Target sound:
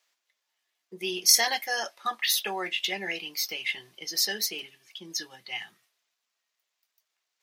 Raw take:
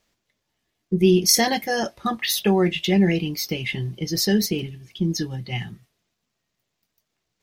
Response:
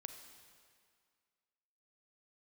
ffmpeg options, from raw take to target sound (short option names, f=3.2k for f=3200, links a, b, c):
-af "highpass=900,volume=-1.5dB"